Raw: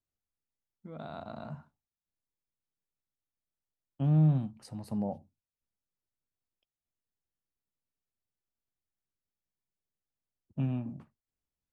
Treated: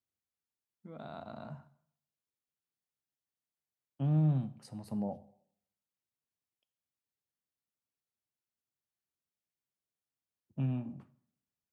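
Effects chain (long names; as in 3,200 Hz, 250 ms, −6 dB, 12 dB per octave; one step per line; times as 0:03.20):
high-pass filter 86 Hz
dense smooth reverb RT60 0.69 s, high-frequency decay 0.9×, DRR 14.5 dB
level −3 dB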